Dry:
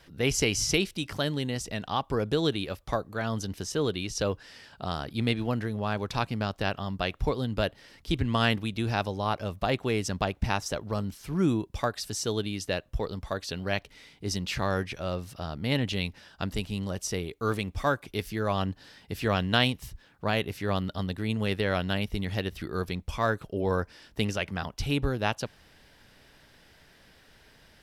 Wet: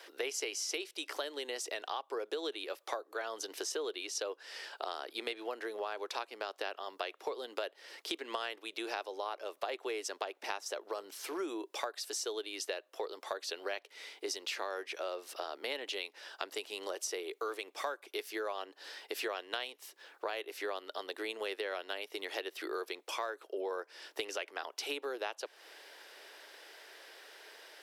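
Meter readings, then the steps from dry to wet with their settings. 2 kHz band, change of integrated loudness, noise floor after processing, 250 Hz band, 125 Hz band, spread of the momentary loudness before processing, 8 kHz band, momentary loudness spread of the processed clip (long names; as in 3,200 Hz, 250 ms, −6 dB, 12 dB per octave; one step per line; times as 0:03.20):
−8.0 dB, −9.5 dB, −67 dBFS, −17.5 dB, below −40 dB, 8 LU, −5.5 dB, 8 LU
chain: Butterworth high-pass 350 Hz 48 dB per octave
downward compressor 6 to 1, threshold −41 dBFS, peak gain reduction 20.5 dB
level +5 dB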